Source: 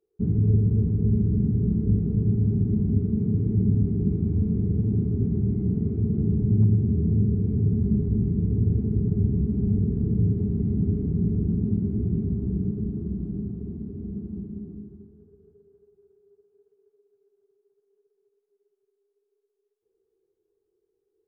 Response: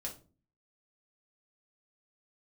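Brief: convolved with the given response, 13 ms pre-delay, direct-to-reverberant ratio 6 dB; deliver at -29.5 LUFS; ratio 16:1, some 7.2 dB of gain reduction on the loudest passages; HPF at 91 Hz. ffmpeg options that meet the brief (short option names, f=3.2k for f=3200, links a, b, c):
-filter_complex "[0:a]highpass=91,acompressor=threshold=-25dB:ratio=16,asplit=2[a][b];[1:a]atrim=start_sample=2205,adelay=13[c];[b][c]afir=irnorm=-1:irlink=0,volume=-4.5dB[d];[a][d]amix=inputs=2:normalize=0,volume=-0.5dB"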